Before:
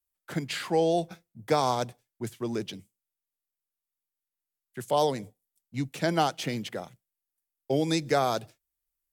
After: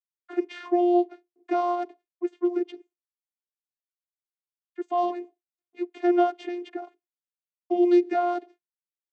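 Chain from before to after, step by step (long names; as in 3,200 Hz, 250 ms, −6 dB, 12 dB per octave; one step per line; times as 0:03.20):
noise gate with hold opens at −52 dBFS
bass and treble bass +4 dB, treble −13 dB
channel vocoder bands 16, saw 352 Hz
level +3.5 dB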